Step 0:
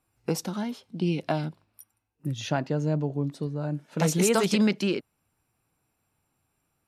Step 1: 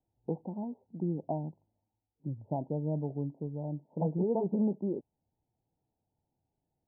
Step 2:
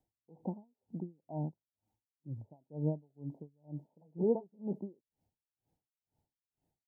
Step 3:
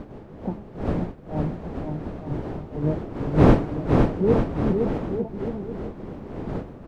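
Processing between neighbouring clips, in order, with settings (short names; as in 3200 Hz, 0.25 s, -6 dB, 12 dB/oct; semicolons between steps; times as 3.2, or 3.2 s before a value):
steep low-pass 930 Hz 96 dB/oct; gain -6.5 dB
dB-linear tremolo 2.1 Hz, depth 38 dB; gain +3 dB
wind noise 360 Hz -36 dBFS; bouncing-ball echo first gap 0.51 s, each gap 0.75×, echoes 5; gain +8.5 dB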